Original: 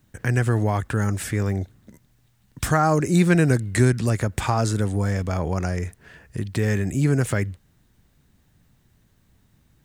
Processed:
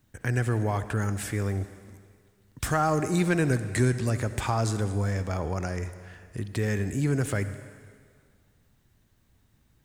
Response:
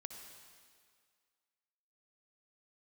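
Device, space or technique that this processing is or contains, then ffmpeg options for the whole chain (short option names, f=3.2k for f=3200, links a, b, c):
saturated reverb return: -filter_complex "[0:a]equalizer=f=170:t=o:w=0.61:g=-3.5,asplit=2[a][b];[1:a]atrim=start_sample=2205[c];[b][c]afir=irnorm=-1:irlink=0,asoftclip=type=tanh:threshold=-17.5dB,volume=2dB[d];[a][d]amix=inputs=2:normalize=0,volume=-8.5dB"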